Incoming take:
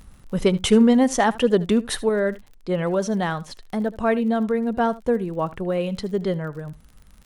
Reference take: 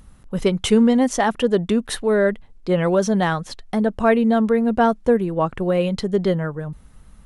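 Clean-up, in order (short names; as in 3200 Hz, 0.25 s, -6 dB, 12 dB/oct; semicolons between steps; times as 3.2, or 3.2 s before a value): clip repair -6.5 dBFS; de-click; inverse comb 76 ms -19.5 dB; gain correction +4.5 dB, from 2.09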